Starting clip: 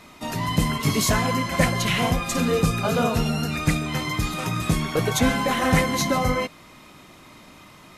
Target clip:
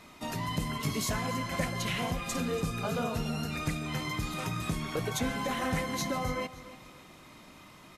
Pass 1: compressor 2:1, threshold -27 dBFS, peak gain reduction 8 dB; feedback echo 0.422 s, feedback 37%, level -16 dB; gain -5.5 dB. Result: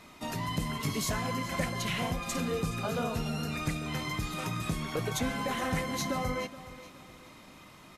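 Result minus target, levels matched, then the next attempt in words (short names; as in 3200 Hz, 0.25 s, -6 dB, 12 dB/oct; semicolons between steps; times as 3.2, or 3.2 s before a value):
echo 0.137 s late
compressor 2:1, threshold -27 dBFS, peak gain reduction 8 dB; feedback echo 0.285 s, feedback 37%, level -16 dB; gain -5.5 dB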